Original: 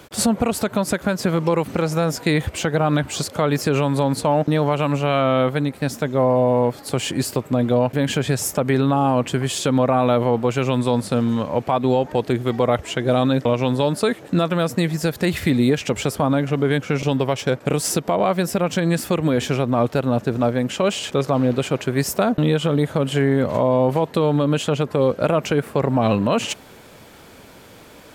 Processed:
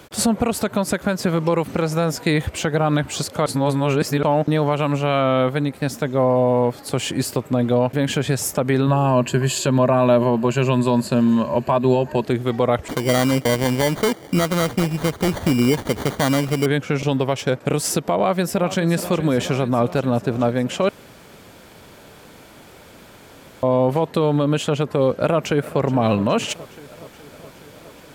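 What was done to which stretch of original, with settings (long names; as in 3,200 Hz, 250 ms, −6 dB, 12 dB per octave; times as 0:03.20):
0:03.46–0:04.23: reverse
0:08.86–0:12.25: EQ curve with evenly spaced ripples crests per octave 1.4, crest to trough 10 dB
0:12.88–0:16.66: sample-rate reduction 2,600 Hz
0:18.14–0:18.80: delay throw 420 ms, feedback 75%, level −13 dB
0:20.89–0:23.63: fill with room tone
0:25.16–0:25.82: delay throw 420 ms, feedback 75%, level −17.5 dB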